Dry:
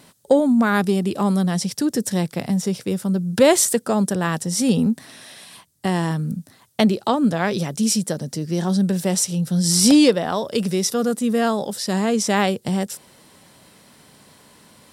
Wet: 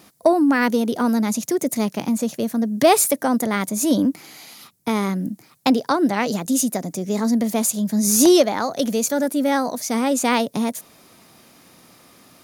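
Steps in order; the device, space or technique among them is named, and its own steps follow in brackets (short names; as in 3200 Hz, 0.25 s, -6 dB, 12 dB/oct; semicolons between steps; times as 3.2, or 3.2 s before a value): nightcore (varispeed +20%)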